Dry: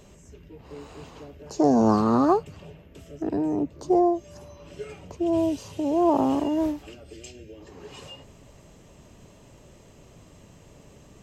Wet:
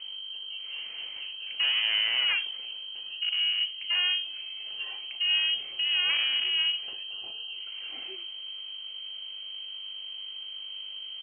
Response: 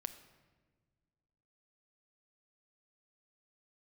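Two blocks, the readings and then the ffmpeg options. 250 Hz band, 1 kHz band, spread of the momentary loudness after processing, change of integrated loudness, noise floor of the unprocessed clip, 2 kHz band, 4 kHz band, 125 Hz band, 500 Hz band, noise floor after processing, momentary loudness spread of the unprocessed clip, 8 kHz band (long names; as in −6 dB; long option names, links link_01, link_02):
below −40 dB, −21.0 dB, 13 LU, −5.0 dB, −52 dBFS, +17.0 dB, +25.0 dB, below −30 dB, below −30 dB, −41 dBFS, 23 LU, below −30 dB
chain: -filter_complex "[0:a]acontrast=77,aeval=exprs='val(0)+0.0282*(sin(2*PI*50*n/s)+sin(2*PI*2*50*n/s)/2+sin(2*PI*3*50*n/s)/3+sin(2*PI*4*50*n/s)/4+sin(2*PI*5*50*n/s)/5)':channel_layout=same,aresample=11025,asoftclip=type=tanh:threshold=-17dB,aresample=44100[link_01];[1:a]atrim=start_sample=2205,atrim=end_sample=4410[link_02];[link_01][link_02]afir=irnorm=-1:irlink=0,lowpass=frequency=2700:width_type=q:width=0.5098,lowpass=frequency=2700:width_type=q:width=0.6013,lowpass=frequency=2700:width_type=q:width=0.9,lowpass=frequency=2700:width_type=q:width=2.563,afreqshift=-3200,volume=-4.5dB"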